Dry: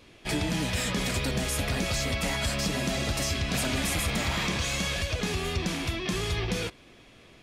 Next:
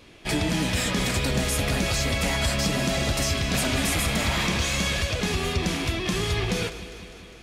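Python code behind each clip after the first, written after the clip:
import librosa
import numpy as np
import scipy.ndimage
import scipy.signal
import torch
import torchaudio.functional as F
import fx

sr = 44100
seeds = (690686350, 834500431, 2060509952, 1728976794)

y = fx.echo_alternate(x, sr, ms=101, hz=2000.0, feedback_pct=81, wet_db=-11.5)
y = y * 10.0 ** (3.5 / 20.0)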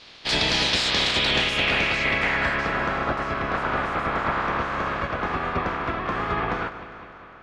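y = fx.spec_clip(x, sr, under_db=17)
y = fx.filter_sweep_lowpass(y, sr, from_hz=4300.0, to_hz=1300.0, start_s=0.84, end_s=3.07, q=2.4)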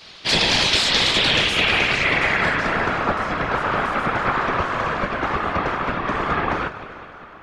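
y = fx.high_shelf(x, sr, hz=8800.0, db=7.5)
y = fx.whisperise(y, sr, seeds[0])
y = y * 10.0 ** (3.5 / 20.0)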